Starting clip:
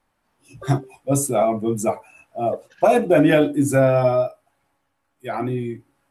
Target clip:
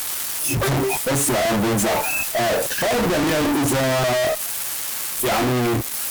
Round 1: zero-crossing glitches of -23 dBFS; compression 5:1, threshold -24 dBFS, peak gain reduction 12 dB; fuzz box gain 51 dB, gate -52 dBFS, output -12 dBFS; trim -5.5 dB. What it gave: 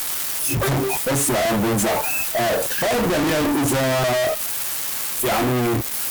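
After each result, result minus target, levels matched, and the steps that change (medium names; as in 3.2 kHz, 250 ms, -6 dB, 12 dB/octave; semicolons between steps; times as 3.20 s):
compression: peak gain reduction +6 dB; zero-crossing glitches: distortion +9 dB
change: compression 5:1, threshold -16.5 dBFS, peak gain reduction 6 dB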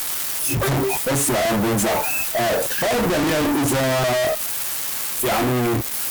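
zero-crossing glitches: distortion +9 dB
change: zero-crossing glitches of -32 dBFS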